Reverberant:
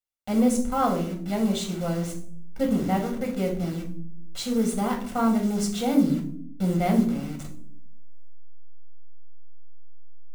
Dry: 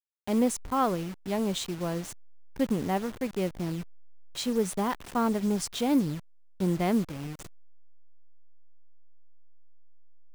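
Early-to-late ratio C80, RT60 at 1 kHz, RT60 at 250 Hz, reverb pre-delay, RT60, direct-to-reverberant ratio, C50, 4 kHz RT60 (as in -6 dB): 13.5 dB, 0.45 s, 1.1 s, 4 ms, 0.60 s, 1.5 dB, 8.5 dB, 0.35 s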